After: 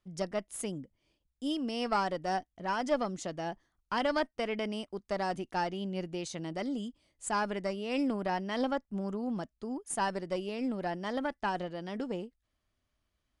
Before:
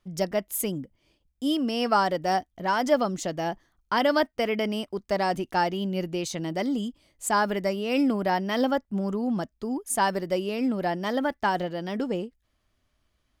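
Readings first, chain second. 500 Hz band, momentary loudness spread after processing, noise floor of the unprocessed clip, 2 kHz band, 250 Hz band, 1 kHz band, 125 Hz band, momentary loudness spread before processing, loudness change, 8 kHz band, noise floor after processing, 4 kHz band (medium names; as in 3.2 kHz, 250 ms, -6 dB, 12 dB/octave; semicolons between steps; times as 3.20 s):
-7.5 dB, 8 LU, -74 dBFS, -7.5 dB, -7.5 dB, -7.5 dB, -7.5 dB, 8 LU, -7.5 dB, -8.0 dB, -82 dBFS, -7.5 dB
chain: Chebyshev shaper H 4 -21 dB, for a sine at -9 dBFS; trim -7.5 dB; MP3 160 kbps 24 kHz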